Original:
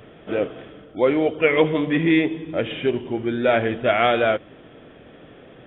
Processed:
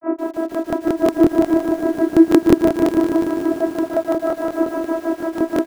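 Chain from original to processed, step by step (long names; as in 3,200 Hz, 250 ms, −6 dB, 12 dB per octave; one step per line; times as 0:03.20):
linear delta modulator 16 kbit/s, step −18 dBFS
mains-hum notches 60/120/180/240/300/360 Hz
downward compressor 6 to 1, threshold −18 dBFS, peak gain reduction 7 dB
feedback echo with a high-pass in the loop 327 ms, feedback 80%, high-pass 400 Hz, level −21 dB
fuzz pedal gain 24 dB, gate −30 dBFS
low-shelf EQ 310 Hz +2.5 dB
echo with shifted repeats 322 ms, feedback 53%, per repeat +38 Hz, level −3 dB
granular cloud 169 ms, grains 6.2 per second, pitch spread up and down by 0 semitones
channel vocoder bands 16, saw 327 Hz
low-pass filter 1,300 Hz 24 dB per octave
regular buffer underruns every 0.18 s, samples 1,024, repeat, from 0:00.32
feedback echo at a low word length 148 ms, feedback 80%, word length 7 bits, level −8 dB
level +3 dB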